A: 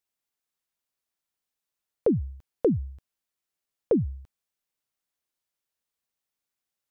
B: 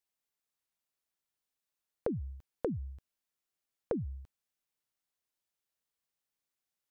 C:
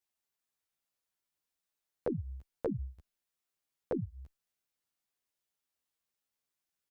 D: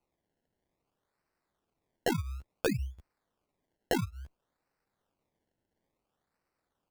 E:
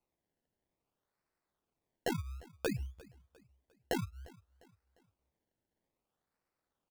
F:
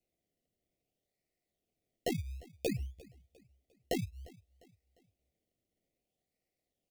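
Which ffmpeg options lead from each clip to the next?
ffmpeg -i in.wav -af "acompressor=threshold=-28dB:ratio=10,volume=-3dB" out.wav
ffmpeg -i in.wav -filter_complex "[0:a]asplit=2[link_01][link_02];[link_02]adelay=11.2,afreqshift=-2.6[link_03];[link_01][link_03]amix=inputs=2:normalize=1,volume=3dB" out.wav
ffmpeg -i in.wav -af "acrusher=samples=25:mix=1:aa=0.000001:lfo=1:lforange=25:lforate=0.58,volume=4.5dB" out.wav
ffmpeg -i in.wav -af "aecho=1:1:351|702|1053:0.075|0.0315|0.0132,volume=-5dB" out.wav
ffmpeg -i in.wav -af "asuperstop=centerf=1200:order=20:qfactor=1.1,volume=1dB" out.wav

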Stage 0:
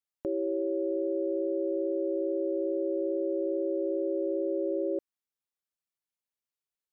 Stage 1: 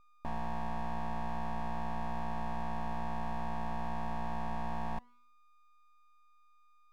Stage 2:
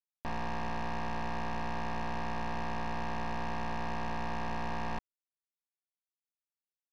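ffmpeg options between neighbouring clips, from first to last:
ffmpeg -i in.wav -af "aeval=exprs='val(0)+0.00178*sin(2*PI*610*n/s)':channel_layout=same,bandreject=frequency=185:width_type=h:width=4,bandreject=frequency=370:width_type=h:width=4,aeval=exprs='abs(val(0))':channel_layout=same,volume=-4dB" out.wav
ffmpeg -i in.wav -af "acrusher=bits=5:mix=0:aa=0.5" out.wav

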